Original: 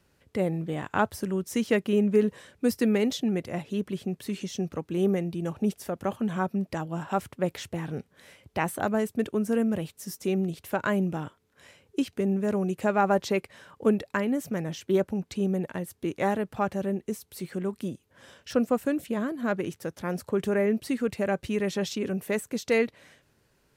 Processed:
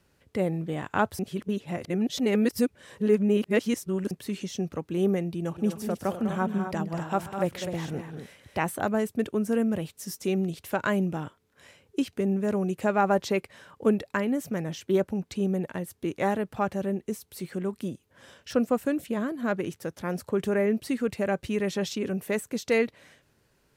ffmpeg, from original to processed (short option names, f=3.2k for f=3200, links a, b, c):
-filter_complex "[0:a]asettb=1/sr,asplit=3[a][b][c];[a]atrim=end=5.384[d];[b]atrim=start=5.38:end=8.59,asetpts=PTS-STARTPTS,afade=t=in:d=0.004:c=qsin,afade=t=out:st=3.206:d=0.004:c=qsin,aecho=1:1:130|200|251:0.106|0.335|0.376,atrim=end_sample=141561[e];[c]atrim=start=8.586[f];[d][e]acrossfade=d=0.004:c1=hsin:c2=qsin[g];[g][f]acrossfade=d=0.004:c1=qsin:c2=hsin,asettb=1/sr,asplit=3[h][i][j];[h]atrim=end=9.904[k];[i]atrim=start=9.9:end=11.06,asetpts=PTS-STARTPTS,afade=t=in:d=0.004:c=qsin,afade=t=out:st=1.156:d=0.004:c=qsin,equalizer=f=5k:t=o:w=2.5:g=2.5[l];[j]atrim=start=11.056[m];[k][l]acrossfade=d=0.004:c1=hsin:c2=qsin[n];[n][m]acrossfade=d=0.004:c1=qsin:c2=hsin,asplit=3[o][p][q];[o]atrim=end=1.192[r];[p]atrim=start=1.188:end=4.112,asetpts=PTS-STARTPTS,areverse[s];[q]atrim=start=4.108[t];[r][s]acrossfade=d=0.004:c1=hsin:c2=hsin[u];[u][t]acrossfade=d=0.004:c1=hsin:c2=hsin"